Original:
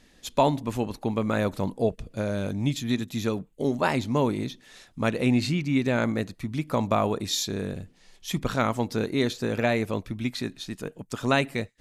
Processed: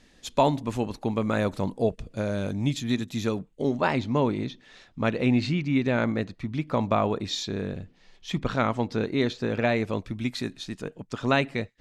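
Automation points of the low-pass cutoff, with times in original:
3.31 s 9.2 kHz
3.88 s 4.4 kHz
9.60 s 4.4 kHz
10.43 s 11 kHz
11.12 s 4.9 kHz

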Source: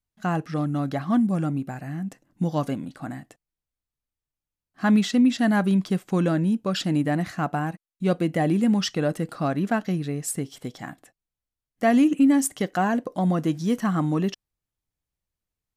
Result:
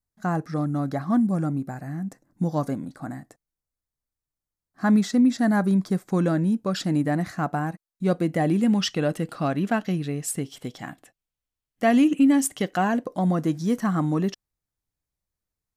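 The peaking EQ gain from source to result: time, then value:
peaking EQ 2.9 kHz 0.55 oct
5.85 s -14.5 dB
6.25 s -7.5 dB
8.14 s -7.5 dB
8.87 s +3 dB
12.80 s +3 dB
13.27 s -5.5 dB

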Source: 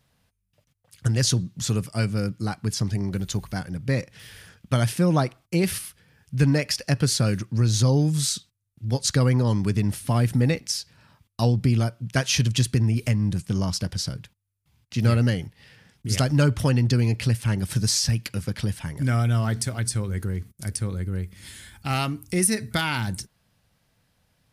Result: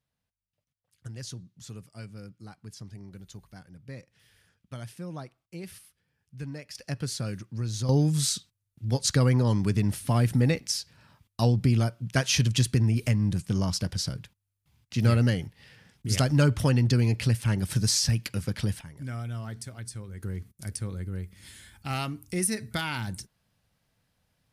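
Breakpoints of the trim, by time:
-18 dB
from 6.75 s -10.5 dB
from 7.89 s -2 dB
from 18.81 s -13 dB
from 20.23 s -6 dB

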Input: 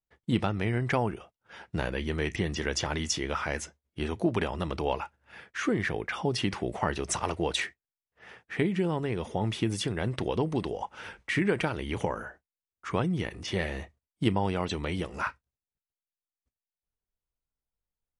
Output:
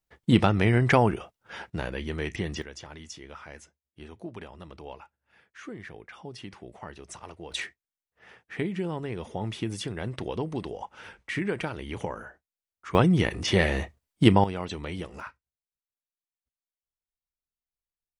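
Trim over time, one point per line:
+7 dB
from 1.70 s -1.5 dB
from 2.62 s -13 dB
from 7.52 s -3 dB
from 12.95 s +8 dB
from 14.44 s -3 dB
from 15.20 s -9.5 dB

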